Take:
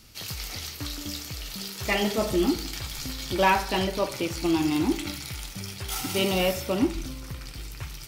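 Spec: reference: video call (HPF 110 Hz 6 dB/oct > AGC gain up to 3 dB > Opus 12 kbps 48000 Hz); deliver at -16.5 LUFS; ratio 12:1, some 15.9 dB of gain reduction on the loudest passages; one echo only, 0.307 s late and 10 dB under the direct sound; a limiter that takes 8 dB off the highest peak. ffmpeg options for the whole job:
-af "acompressor=threshold=-33dB:ratio=12,alimiter=level_in=3.5dB:limit=-24dB:level=0:latency=1,volume=-3.5dB,highpass=f=110:p=1,aecho=1:1:307:0.316,dynaudnorm=m=3dB,volume=23.5dB" -ar 48000 -c:a libopus -b:a 12k

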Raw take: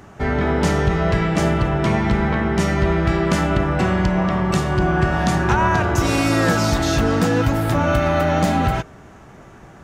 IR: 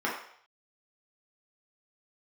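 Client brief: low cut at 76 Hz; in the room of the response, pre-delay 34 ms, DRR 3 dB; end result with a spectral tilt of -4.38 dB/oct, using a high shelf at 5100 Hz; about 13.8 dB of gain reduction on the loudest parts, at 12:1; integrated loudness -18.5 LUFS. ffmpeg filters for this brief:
-filter_complex "[0:a]highpass=76,highshelf=f=5.1k:g=-8.5,acompressor=threshold=-28dB:ratio=12,asplit=2[a][b];[1:a]atrim=start_sample=2205,adelay=34[c];[b][c]afir=irnorm=-1:irlink=0,volume=-13.5dB[d];[a][d]amix=inputs=2:normalize=0,volume=12dB"

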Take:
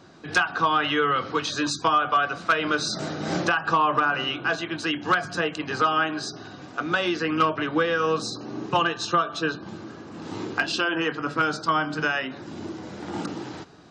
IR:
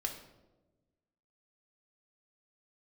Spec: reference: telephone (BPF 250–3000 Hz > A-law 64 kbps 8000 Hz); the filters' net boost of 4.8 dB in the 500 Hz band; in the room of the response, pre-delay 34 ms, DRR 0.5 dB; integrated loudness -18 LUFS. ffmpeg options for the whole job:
-filter_complex "[0:a]equalizer=f=500:t=o:g=6,asplit=2[a][b];[1:a]atrim=start_sample=2205,adelay=34[c];[b][c]afir=irnorm=-1:irlink=0,volume=-2dB[d];[a][d]amix=inputs=2:normalize=0,highpass=250,lowpass=3k,volume=3dB" -ar 8000 -c:a pcm_alaw

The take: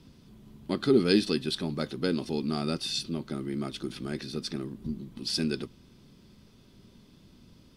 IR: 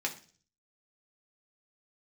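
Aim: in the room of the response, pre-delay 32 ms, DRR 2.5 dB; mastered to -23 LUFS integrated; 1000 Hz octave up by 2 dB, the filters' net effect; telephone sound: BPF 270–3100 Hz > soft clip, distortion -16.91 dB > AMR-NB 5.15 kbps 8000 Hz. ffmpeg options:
-filter_complex "[0:a]equalizer=f=1k:t=o:g=3,asplit=2[a][b];[1:a]atrim=start_sample=2205,adelay=32[c];[b][c]afir=irnorm=-1:irlink=0,volume=-7dB[d];[a][d]amix=inputs=2:normalize=0,highpass=270,lowpass=3.1k,asoftclip=threshold=-17dB,volume=11dB" -ar 8000 -c:a libopencore_amrnb -b:a 5150

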